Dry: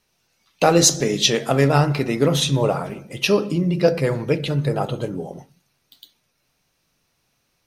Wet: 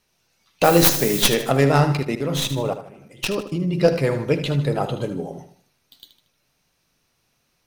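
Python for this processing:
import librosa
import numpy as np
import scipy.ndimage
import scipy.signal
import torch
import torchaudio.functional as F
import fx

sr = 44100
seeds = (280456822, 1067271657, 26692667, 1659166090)

p1 = fx.tracing_dist(x, sr, depth_ms=0.2)
p2 = fx.dmg_noise_colour(p1, sr, seeds[0], colour='blue', level_db=-28.0, at=(0.63, 1.24), fade=0.02)
p3 = fx.level_steps(p2, sr, step_db=23, at=(1.97, 3.73))
y = p3 + fx.echo_feedback(p3, sr, ms=77, feedback_pct=40, wet_db=-11, dry=0)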